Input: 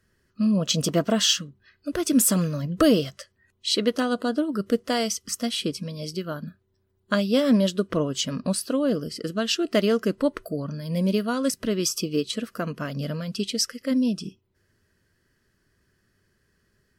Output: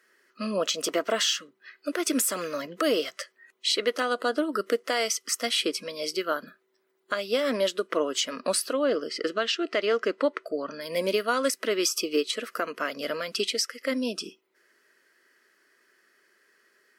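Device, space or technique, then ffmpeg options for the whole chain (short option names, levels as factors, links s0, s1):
laptop speaker: -filter_complex "[0:a]highpass=f=340:w=0.5412,highpass=f=340:w=1.3066,equalizer=f=1300:t=o:w=0.3:g=4.5,equalizer=f=2100:t=o:w=0.54:g=7.5,alimiter=limit=0.106:level=0:latency=1:release=341,asettb=1/sr,asplit=3[s0][s1][s2];[s0]atrim=end=8.734[s3];[s1]atrim=start=8.73:end=10.81,asetpts=PTS-STARTPTS,afade=t=in:d=0.004:c=qsin,afade=t=out:st=2.076:d=0.004:c=qsin,lowpass=5300[s4];[s2]atrim=start=10.806[s5];[s3][s4]acrossfade=d=0.004:c1=hsin:c2=qsin[s6];[s6][s5]acrossfade=d=0.004:c1=qsin:c2=hsin,volume=1.68"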